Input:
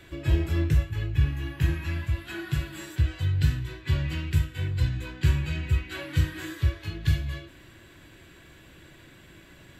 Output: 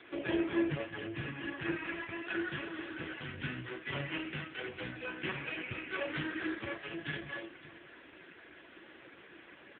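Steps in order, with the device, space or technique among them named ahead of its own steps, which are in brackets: 4.42–5.68 s: dynamic bell 120 Hz, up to -5 dB, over -35 dBFS, Q 1.1; satellite phone (band-pass 350–3200 Hz; delay 567 ms -19 dB; trim +5.5 dB; AMR-NB 4.75 kbps 8 kHz)

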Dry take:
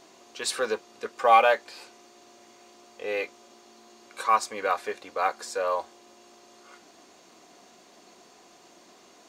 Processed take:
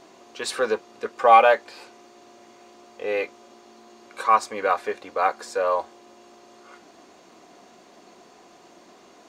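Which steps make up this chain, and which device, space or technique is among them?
behind a face mask (treble shelf 2.9 kHz -8 dB); trim +5 dB

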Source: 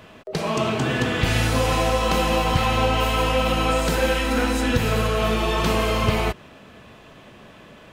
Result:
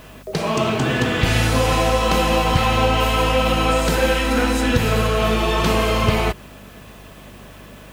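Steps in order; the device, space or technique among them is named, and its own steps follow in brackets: video cassette with head-switching buzz (mains buzz 50 Hz, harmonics 5, -48 dBFS; white noise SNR 34 dB); trim +3 dB

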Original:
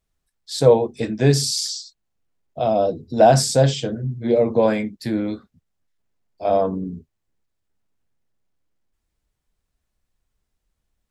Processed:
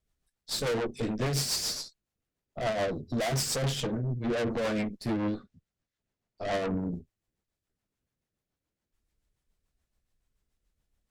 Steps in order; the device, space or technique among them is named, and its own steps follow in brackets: overdriven rotary cabinet (valve stage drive 29 dB, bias 0.75; rotary cabinet horn 7 Hz); 5.24–6.54 s: low-pass 7.9 kHz; trim +3.5 dB

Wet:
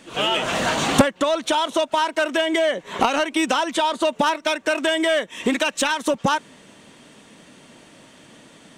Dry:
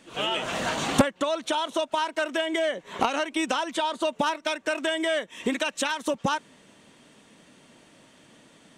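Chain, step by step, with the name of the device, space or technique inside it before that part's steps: parallel distortion (in parallel at -6 dB: hard clipper -25.5 dBFS, distortion -8 dB); on the sum: trim +3.5 dB

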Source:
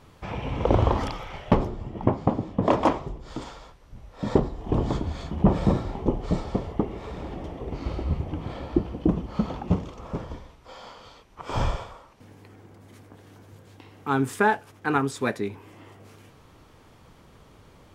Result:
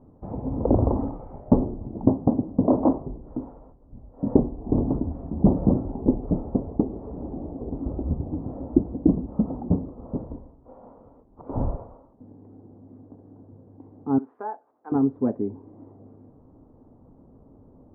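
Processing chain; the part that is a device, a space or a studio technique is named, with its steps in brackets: 14.18–14.92 s: high-pass 930 Hz 12 dB/octave; under water (low-pass 790 Hz 24 dB/octave; peaking EQ 260 Hz +10 dB 0.45 oct); trim -1 dB

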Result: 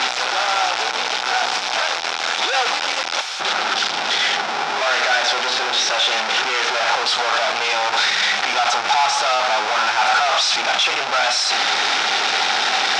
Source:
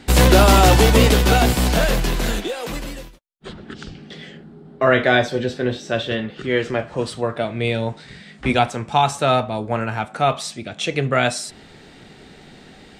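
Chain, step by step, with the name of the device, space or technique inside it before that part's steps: home computer beeper (one-bit comparator; cabinet simulation 740–5900 Hz, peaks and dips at 800 Hz +10 dB, 1.4 kHz +7 dB, 2.4 kHz +4 dB, 3.6 kHz +5 dB, 5.4 kHz +6 dB)

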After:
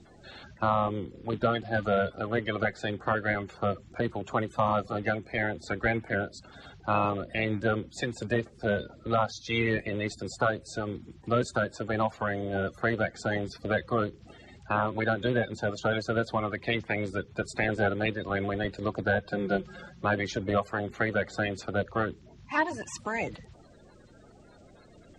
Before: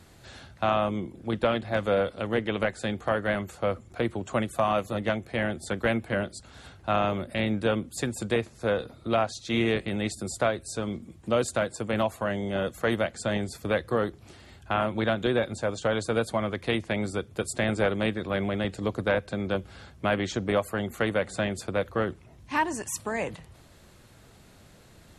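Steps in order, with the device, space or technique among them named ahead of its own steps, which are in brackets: dynamic bell 250 Hz, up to -3 dB, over -39 dBFS, Q 1.2; clip after many re-uploads (low-pass 6.3 kHz 24 dB/octave; coarse spectral quantiser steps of 30 dB); 19.31–20.05 s: comb 5.6 ms, depth 86%

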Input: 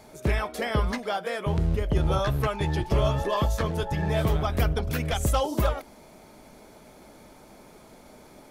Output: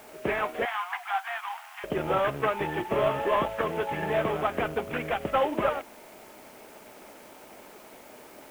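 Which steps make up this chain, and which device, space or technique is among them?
army field radio (band-pass 310–3300 Hz; CVSD coder 16 kbps; white noise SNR 26 dB); 0.65–1.84 s: Chebyshev high-pass 700 Hz, order 10; trim +3 dB

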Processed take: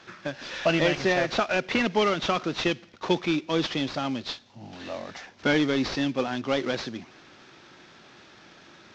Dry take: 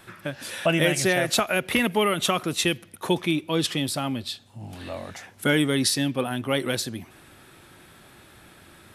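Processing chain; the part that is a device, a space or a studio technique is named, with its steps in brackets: early wireless headset (high-pass 170 Hz 12 dB/octave; CVSD coder 32 kbps)

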